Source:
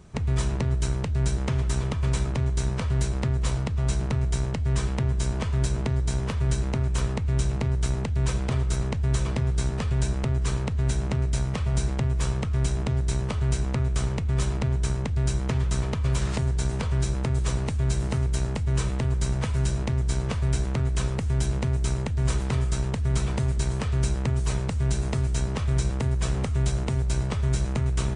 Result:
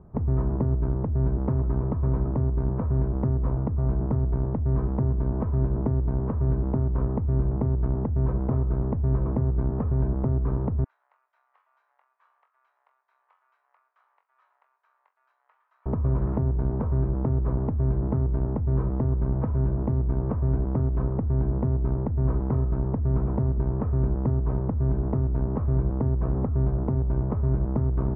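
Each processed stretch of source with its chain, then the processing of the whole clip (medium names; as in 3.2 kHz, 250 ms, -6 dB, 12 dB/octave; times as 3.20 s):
10.84–15.86 s: Bessel high-pass 1.4 kHz, order 4 + differentiator + flutter echo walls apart 3.8 m, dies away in 0.2 s
whole clip: low-pass 1.1 kHz 24 dB/octave; dynamic bell 280 Hz, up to +7 dB, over -46 dBFS, Q 1.8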